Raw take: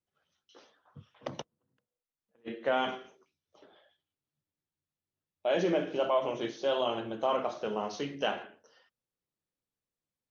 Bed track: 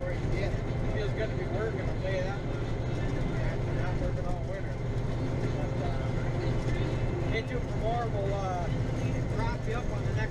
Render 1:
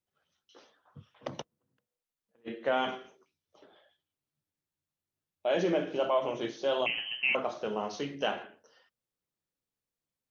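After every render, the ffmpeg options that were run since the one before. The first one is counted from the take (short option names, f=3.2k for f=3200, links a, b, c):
-filter_complex "[0:a]asettb=1/sr,asplit=3[a][b][c];[a]atrim=end=6.864[d];[b]atrim=start=6.86:end=7.35,asetpts=PTS-STARTPTS,afade=t=in:d=0.004:c=qsin,afade=t=out:st=0.486:d=0.004:c=qsin,lowpass=f=2.8k:t=q:w=0.5098,lowpass=f=2.8k:t=q:w=0.6013,lowpass=f=2.8k:t=q:w=0.9,lowpass=f=2.8k:t=q:w=2.563,afreqshift=-3300[e];[c]atrim=start=7.346[f];[d][e]acrossfade=d=0.004:c1=hsin:c2=qsin[g];[g][f]acrossfade=d=0.004:c1=qsin:c2=hsin"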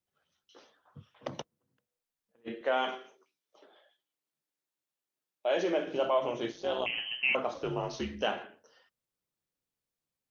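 -filter_complex "[0:a]asettb=1/sr,asplit=3[a][b][c];[a]atrim=end=2.614[d];[b]atrim=start=2.61:end=5.87,asetpts=PTS-STARTPTS,afade=t=in:d=0.004:c=qsin,afade=t=out:st=3.256:d=0.004:c=qsin,highpass=320[e];[c]atrim=start=5.866[f];[d][e]acrossfade=d=0.004:c1=hsin:c2=qsin[g];[g][f]acrossfade=d=0.004:c1=qsin:c2=hsin,asettb=1/sr,asplit=3[h][i][j];[h]atrim=end=6.524[k];[i]atrim=start=6.52:end=6.93,asetpts=PTS-STARTPTS,afade=t=in:d=0.004:c=qsin,afade=t=out:st=0.406:d=0.004:c=qsin,tremolo=f=190:d=0.667[l];[j]atrim=start=6.926[m];[k][l]acrossfade=d=0.004:c1=hsin:c2=qsin[n];[n][m]acrossfade=d=0.004:c1=qsin:c2=hsin,asettb=1/sr,asplit=3[o][p][q];[o]atrim=end=7.544[r];[p]atrim=start=7.54:end=8.22,asetpts=PTS-STARTPTS,afade=t=in:d=0.004:c=qsin,afade=t=out:st=0.676:d=0.004:c=qsin,afreqshift=-69[s];[q]atrim=start=8.216[t];[r][s]acrossfade=d=0.004:c1=hsin:c2=qsin[u];[u][t]acrossfade=d=0.004:c1=qsin:c2=hsin"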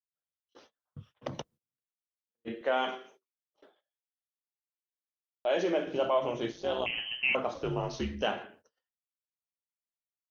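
-af "agate=range=-28dB:threshold=-59dB:ratio=16:detection=peak,lowshelf=f=120:g=9.5"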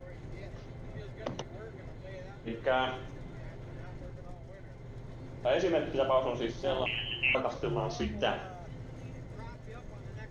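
-filter_complex "[1:a]volume=-14dB[a];[0:a][a]amix=inputs=2:normalize=0"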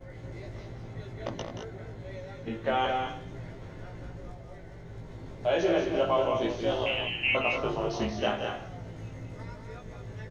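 -filter_complex "[0:a]asplit=2[a][b];[b]adelay=18,volume=-2.5dB[c];[a][c]amix=inputs=2:normalize=0,asplit=2[d][e];[e]aecho=0:1:177.8|212.8:0.398|0.447[f];[d][f]amix=inputs=2:normalize=0"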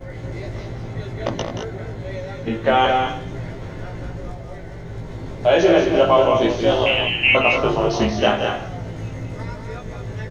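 -af "volume=11.5dB"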